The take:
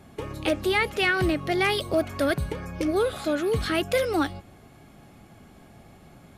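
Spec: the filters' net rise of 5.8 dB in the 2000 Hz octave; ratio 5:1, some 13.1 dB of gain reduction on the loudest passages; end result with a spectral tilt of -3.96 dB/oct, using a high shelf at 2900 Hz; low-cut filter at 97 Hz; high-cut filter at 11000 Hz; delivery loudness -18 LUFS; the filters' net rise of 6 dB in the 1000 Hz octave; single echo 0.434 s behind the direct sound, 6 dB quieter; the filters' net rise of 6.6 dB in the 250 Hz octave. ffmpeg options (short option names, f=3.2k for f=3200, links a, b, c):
-af "highpass=97,lowpass=11k,equalizer=f=250:t=o:g=9,equalizer=f=1k:t=o:g=6.5,equalizer=f=2k:t=o:g=6.5,highshelf=f=2.9k:g=-4,acompressor=threshold=-29dB:ratio=5,aecho=1:1:434:0.501,volume=13dB"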